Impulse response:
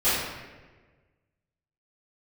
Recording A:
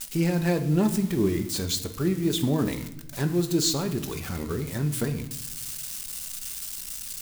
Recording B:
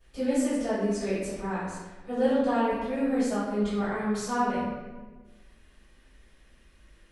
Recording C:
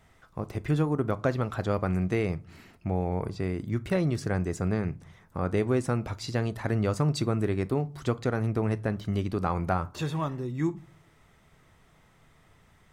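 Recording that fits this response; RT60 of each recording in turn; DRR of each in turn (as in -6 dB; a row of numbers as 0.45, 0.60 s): B; 0.90 s, 1.3 s, not exponential; 7.0, -17.5, 14.5 dB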